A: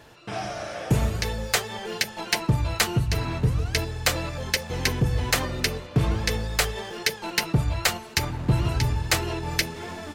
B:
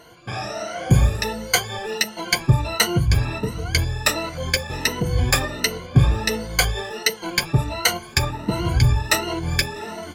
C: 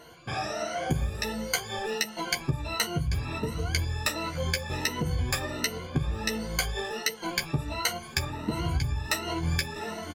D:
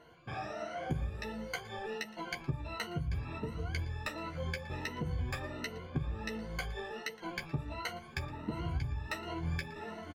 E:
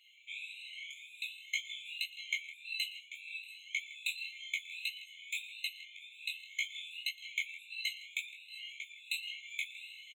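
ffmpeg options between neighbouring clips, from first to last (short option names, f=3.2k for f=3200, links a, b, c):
-af "afftfilt=real='re*pow(10,19/40*sin(2*PI*(1.9*log(max(b,1)*sr/1024/100)/log(2)-(1.4)*(pts-256)/sr)))':imag='im*pow(10,19/40*sin(2*PI*(1.9*log(max(b,1)*sr/1024/100)/log(2)-(1.4)*(pts-256)/sr)))':win_size=1024:overlap=0.75"
-filter_complex "[0:a]acompressor=threshold=-22dB:ratio=6,asplit=2[a][b];[b]adelay=13,volume=-6.5dB[c];[a][c]amix=inputs=2:normalize=0,volume=-3.5dB"
-af "bass=f=250:g=1,treble=f=4k:g=-13,aecho=1:1:116:0.0841,volume=-8dB"
-filter_complex "[0:a]asplit=2[a][b];[b]adelay=160,highpass=300,lowpass=3.4k,asoftclip=type=hard:threshold=-32dB,volume=-14dB[c];[a][c]amix=inputs=2:normalize=0,flanger=delay=18.5:depth=5.7:speed=1.8,afftfilt=real='re*eq(mod(floor(b*sr/1024/2100),2),1)':imag='im*eq(mod(floor(b*sr/1024/2100),2),1)':win_size=1024:overlap=0.75,volume=11.5dB"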